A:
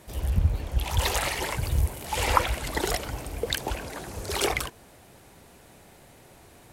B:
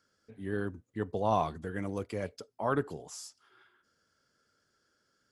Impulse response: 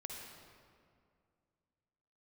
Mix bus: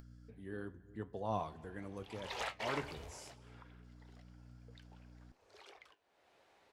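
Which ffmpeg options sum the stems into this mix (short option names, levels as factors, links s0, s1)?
-filter_complex "[0:a]acrossover=split=370 5500:gain=0.126 1 0.0891[s0][s1][s2];[s0][s1][s2]amix=inputs=3:normalize=0,dynaudnorm=f=300:g=5:m=3.98,adelay=1250,volume=0.224,afade=t=in:st=2.28:d=0.22:silence=0.334965[s3];[1:a]aeval=exprs='val(0)+0.00251*(sin(2*PI*60*n/s)+sin(2*PI*2*60*n/s)/2+sin(2*PI*3*60*n/s)/3+sin(2*PI*4*60*n/s)/4+sin(2*PI*5*60*n/s)/5)':c=same,volume=0.447,asplit=3[s4][s5][s6];[s5]volume=0.211[s7];[s6]apad=whole_len=351827[s8];[s3][s8]sidechaingate=range=0.0251:threshold=0.00178:ratio=16:detection=peak[s9];[2:a]atrim=start_sample=2205[s10];[s7][s10]afir=irnorm=-1:irlink=0[s11];[s9][s4][s11]amix=inputs=3:normalize=0,acompressor=mode=upward:threshold=0.00708:ratio=2.5,flanger=delay=7.3:depth=6.6:regen=73:speed=0.87:shape=triangular"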